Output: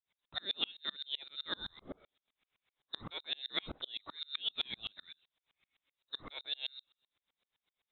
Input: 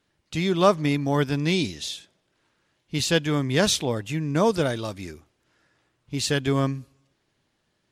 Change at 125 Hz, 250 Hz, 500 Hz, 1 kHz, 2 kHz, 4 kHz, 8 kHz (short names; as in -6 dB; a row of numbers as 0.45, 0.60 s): -33.5 dB, -30.0 dB, -30.0 dB, -23.5 dB, -16.5 dB, -7.0 dB, under -40 dB